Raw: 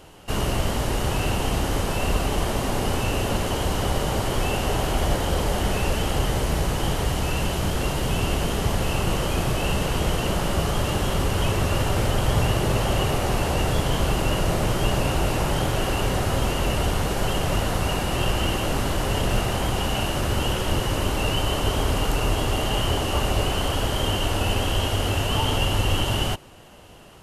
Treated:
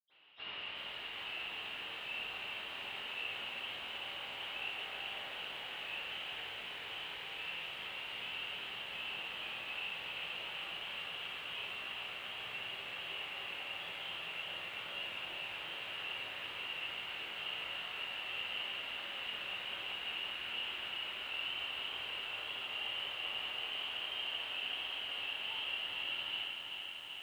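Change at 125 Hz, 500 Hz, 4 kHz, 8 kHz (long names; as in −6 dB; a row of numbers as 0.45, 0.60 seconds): below −40 dB, −27.5 dB, −9.0 dB, −32.0 dB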